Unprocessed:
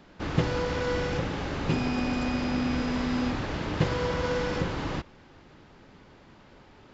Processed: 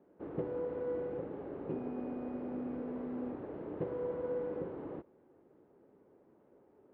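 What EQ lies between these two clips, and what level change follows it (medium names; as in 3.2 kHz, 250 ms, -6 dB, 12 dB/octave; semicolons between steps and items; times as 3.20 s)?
band-pass filter 420 Hz, Q 2; distance through air 390 m; -3.5 dB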